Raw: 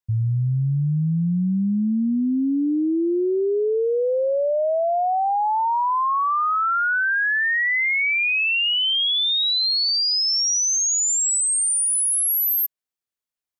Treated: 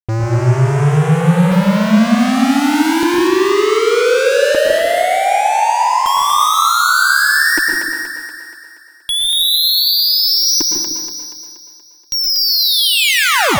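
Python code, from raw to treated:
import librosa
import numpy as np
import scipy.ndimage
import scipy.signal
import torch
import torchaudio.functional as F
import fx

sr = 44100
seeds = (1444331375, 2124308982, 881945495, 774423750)

p1 = fx.tape_stop_end(x, sr, length_s=2.54)
p2 = fx.filter_lfo_lowpass(p1, sr, shape='square', hz=0.33, low_hz=320.0, high_hz=3800.0, q=4.1)
p3 = fx.fuzz(p2, sr, gain_db=42.0, gate_db=-49.0)
p4 = p3 + fx.echo_split(p3, sr, split_hz=420.0, low_ms=152, high_ms=238, feedback_pct=52, wet_db=-4.5, dry=0)
p5 = fx.rev_plate(p4, sr, seeds[0], rt60_s=0.8, hf_ratio=0.65, predelay_ms=100, drr_db=2.0)
y = p5 * 10.0 ** (-2.5 / 20.0)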